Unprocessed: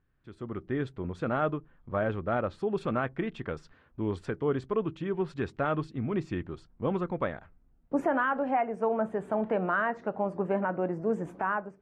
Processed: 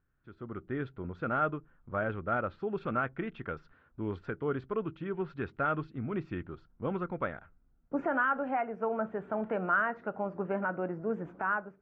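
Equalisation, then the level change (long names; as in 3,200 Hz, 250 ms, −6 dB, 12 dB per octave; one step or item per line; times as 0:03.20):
dynamic equaliser 2,500 Hz, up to +4 dB, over −52 dBFS, Q 1.6
high-frequency loss of the air 230 metres
parametric band 1,400 Hz +9.5 dB 0.27 octaves
−4.0 dB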